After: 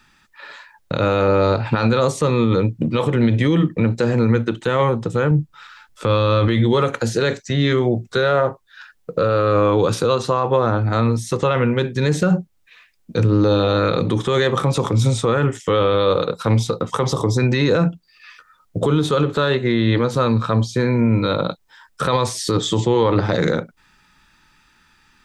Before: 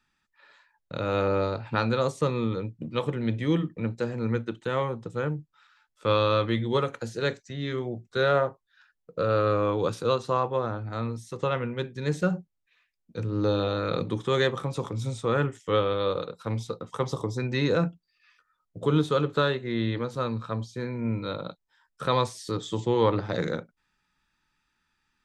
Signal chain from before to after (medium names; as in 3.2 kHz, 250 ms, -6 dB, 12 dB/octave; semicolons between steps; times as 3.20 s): 5.31–6.48 s: bass shelf 210 Hz +8.5 dB; in parallel at -0.5 dB: compression, threshold -39 dBFS, peak gain reduction 20 dB; on the sum: loudness maximiser +20 dB; trim -7 dB